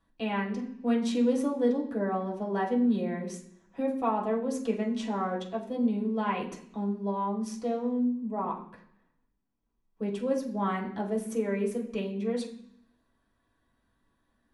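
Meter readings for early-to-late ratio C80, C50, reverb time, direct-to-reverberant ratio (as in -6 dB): 12.0 dB, 8.5 dB, 0.65 s, -3.5 dB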